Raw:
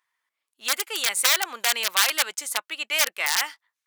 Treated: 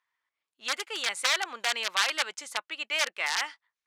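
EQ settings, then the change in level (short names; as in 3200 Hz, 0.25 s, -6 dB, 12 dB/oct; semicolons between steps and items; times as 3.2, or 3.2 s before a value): air absorption 78 m; -3.0 dB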